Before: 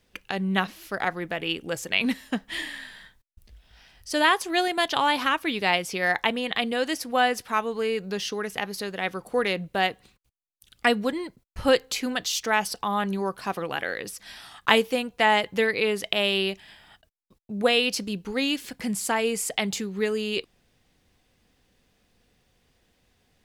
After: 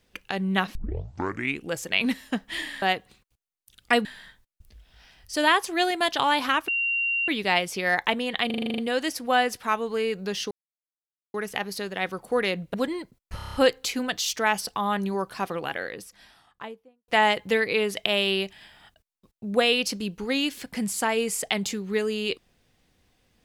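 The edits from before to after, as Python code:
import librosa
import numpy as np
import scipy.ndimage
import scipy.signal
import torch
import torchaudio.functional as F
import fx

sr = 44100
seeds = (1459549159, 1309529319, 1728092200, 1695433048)

y = fx.studio_fade_out(x, sr, start_s=13.5, length_s=1.65)
y = fx.edit(y, sr, fx.tape_start(start_s=0.75, length_s=0.91),
    fx.insert_tone(at_s=5.45, length_s=0.6, hz=2760.0, db=-22.5),
    fx.stutter(start_s=6.63, slice_s=0.04, count=9),
    fx.insert_silence(at_s=8.36, length_s=0.83),
    fx.move(start_s=9.76, length_s=1.23, to_s=2.82),
    fx.stutter(start_s=11.61, slice_s=0.03, count=7), tone=tone)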